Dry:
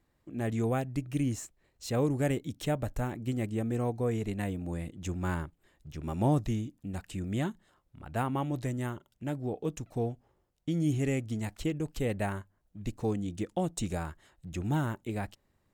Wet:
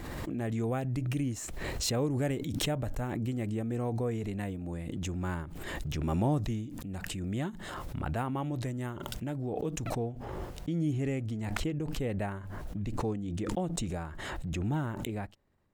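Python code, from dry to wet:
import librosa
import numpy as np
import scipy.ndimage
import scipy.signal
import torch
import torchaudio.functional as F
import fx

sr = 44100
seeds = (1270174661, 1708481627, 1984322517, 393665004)

y = fx.high_shelf(x, sr, hz=4000.0, db=fx.steps((0.0, -3.0), (9.93, -9.0)))
y = fx.pre_swell(y, sr, db_per_s=21.0)
y = F.gain(torch.from_numpy(y), -2.5).numpy()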